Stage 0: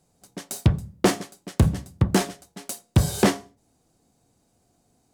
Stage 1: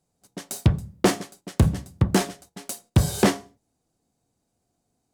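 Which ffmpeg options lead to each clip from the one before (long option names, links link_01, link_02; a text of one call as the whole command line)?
ffmpeg -i in.wav -af "agate=range=-9dB:threshold=-50dB:ratio=16:detection=peak" out.wav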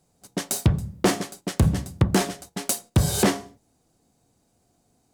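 ffmpeg -i in.wav -af "alimiter=limit=-16.5dB:level=0:latency=1:release=305,volume=8.5dB" out.wav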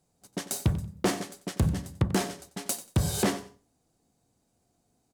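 ffmpeg -i in.wav -af "aecho=1:1:92|184:0.178|0.0391,volume=-6dB" out.wav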